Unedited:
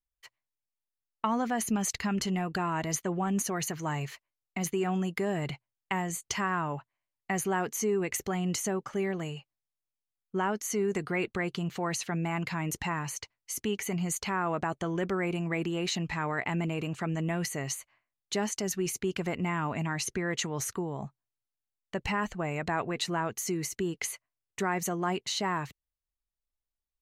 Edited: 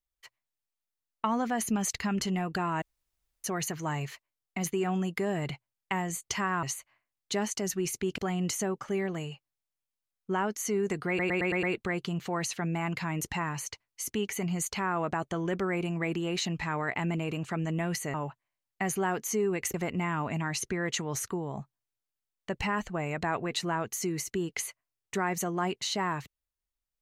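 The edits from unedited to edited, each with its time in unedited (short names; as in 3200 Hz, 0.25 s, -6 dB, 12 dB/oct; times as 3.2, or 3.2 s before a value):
2.82–3.44 room tone
6.63–8.23 swap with 17.64–19.19
11.13 stutter 0.11 s, 6 plays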